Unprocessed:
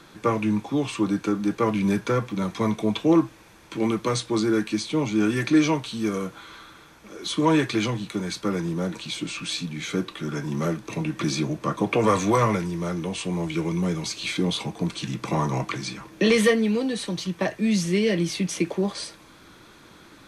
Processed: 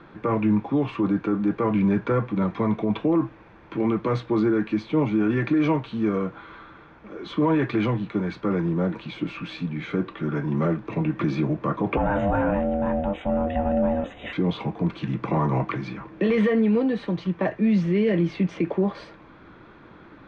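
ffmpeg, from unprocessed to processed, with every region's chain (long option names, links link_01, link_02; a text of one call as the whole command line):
ffmpeg -i in.wav -filter_complex "[0:a]asettb=1/sr,asplit=3[link_01][link_02][link_03];[link_01]atrim=end=11.974[link_04];[link_02]atrim=start=11.97:end=14.33,asetpts=PTS-STARTPTS,afade=type=in:duration=0.004:curve=qsin,afade=type=out:start_time=2.356:duration=0.004:curve=qsin,lowshelf=frequency=150:gain=11,aeval=exprs='val(0)*sin(2*PI*400*n/s)':channel_layout=same,asuperstop=centerf=4900:order=20:qfactor=2[link_05];[link_03]atrim=start=14.326[link_06];[link_04][link_05]acrossfade=duration=0.004:curve1=hsin:curve2=qsin[link_07];[link_07][link_06]acrossfade=duration=0.004:curve1=qsin:curve2=hsin,lowpass=2400,aemphasis=mode=reproduction:type=75fm,alimiter=limit=-16.5dB:level=0:latency=1:release=15,volume=2.5dB" out.wav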